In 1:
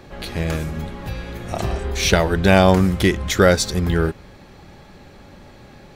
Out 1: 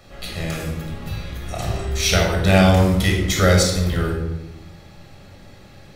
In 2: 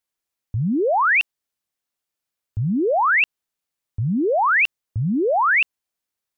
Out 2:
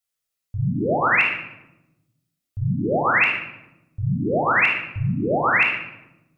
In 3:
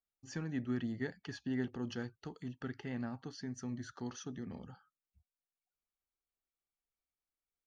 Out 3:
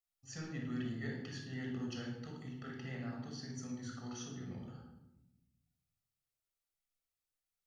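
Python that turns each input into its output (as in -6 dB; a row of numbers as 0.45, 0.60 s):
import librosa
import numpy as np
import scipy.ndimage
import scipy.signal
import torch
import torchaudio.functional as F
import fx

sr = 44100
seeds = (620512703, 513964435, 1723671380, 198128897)

y = fx.high_shelf(x, sr, hz=2500.0, db=9.0)
y = fx.room_shoebox(y, sr, seeds[0], volume_m3=3400.0, walls='furnished', distance_m=6.5)
y = y * 10.0 ** (-9.5 / 20.0)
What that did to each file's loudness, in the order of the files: -0.5, -1.0, -2.0 LU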